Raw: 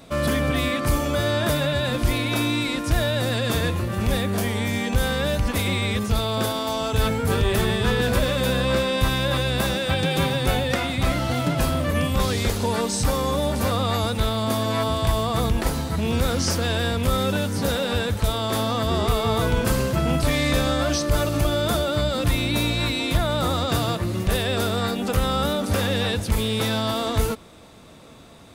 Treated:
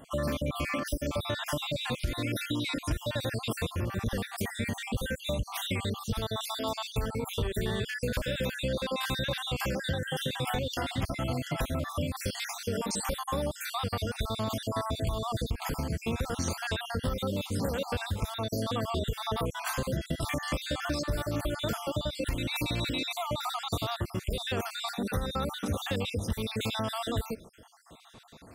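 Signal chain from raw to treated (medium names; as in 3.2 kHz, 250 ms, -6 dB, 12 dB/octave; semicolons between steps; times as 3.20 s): random holes in the spectrogram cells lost 52%; compression, threshold -24 dBFS, peak gain reduction 9.5 dB; trim -3 dB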